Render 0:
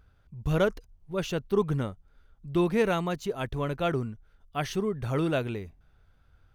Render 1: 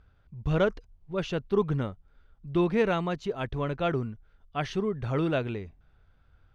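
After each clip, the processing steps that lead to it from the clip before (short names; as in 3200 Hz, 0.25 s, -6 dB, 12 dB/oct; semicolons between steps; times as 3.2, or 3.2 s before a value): LPF 4400 Hz 12 dB/oct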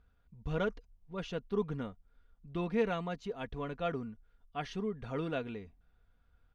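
comb 4.2 ms, depth 48%; gain -8.5 dB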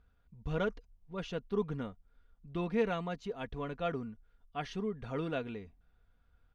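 nothing audible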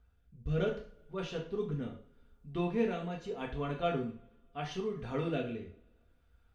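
rotary speaker horn 0.75 Hz; two-slope reverb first 0.41 s, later 1.8 s, from -28 dB, DRR -1 dB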